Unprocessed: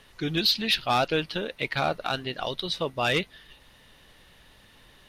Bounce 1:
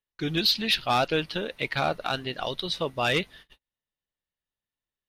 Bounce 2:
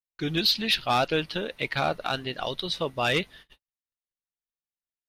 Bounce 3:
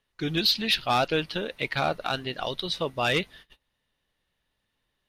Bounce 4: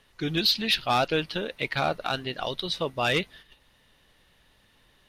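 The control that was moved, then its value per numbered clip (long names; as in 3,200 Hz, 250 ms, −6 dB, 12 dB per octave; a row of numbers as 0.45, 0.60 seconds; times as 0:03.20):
noise gate, range: −40, −54, −23, −7 decibels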